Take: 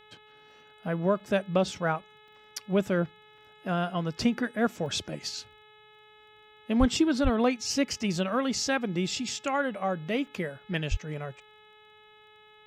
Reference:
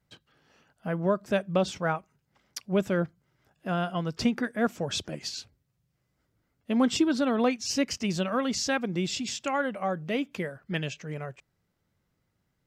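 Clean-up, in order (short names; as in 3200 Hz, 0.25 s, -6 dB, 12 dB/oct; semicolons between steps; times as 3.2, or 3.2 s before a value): de-click; de-hum 426.3 Hz, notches 9; de-plosive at 6.79/7.23/10.9; interpolate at 1.2/2.28/3.38/4.86/10.27, 2.4 ms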